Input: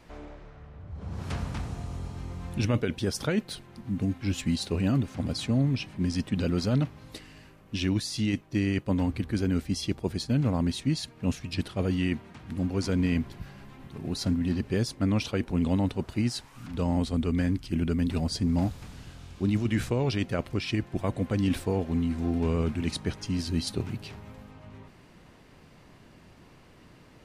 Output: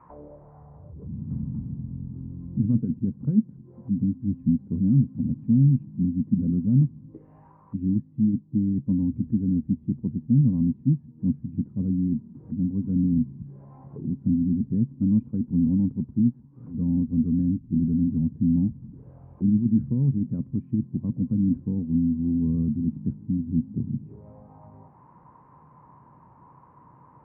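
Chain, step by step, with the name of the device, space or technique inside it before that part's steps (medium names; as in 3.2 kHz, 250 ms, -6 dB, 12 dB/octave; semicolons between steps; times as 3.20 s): envelope filter bass rig (touch-sensitive low-pass 230–1200 Hz down, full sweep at -32.5 dBFS; cabinet simulation 62–2300 Hz, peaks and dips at 140 Hz +9 dB, 390 Hz -4 dB, 670 Hz -7 dB, 1 kHz +7 dB); trim -3.5 dB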